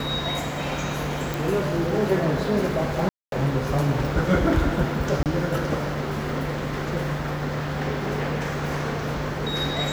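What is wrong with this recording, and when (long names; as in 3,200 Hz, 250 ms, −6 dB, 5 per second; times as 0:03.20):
0:01.34: click
0:03.09–0:03.32: drop-out 232 ms
0:05.23–0:05.26: drop-out 28 ms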